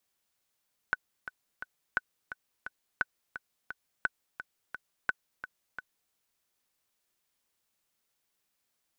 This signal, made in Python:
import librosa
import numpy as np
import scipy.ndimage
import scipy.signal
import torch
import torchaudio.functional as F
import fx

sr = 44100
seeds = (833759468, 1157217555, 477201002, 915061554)

y = fx.click_track(sr, bpm=173, beats=3, bars=5, hz=1500.0, accent_db=12.0, level_db=-13.5)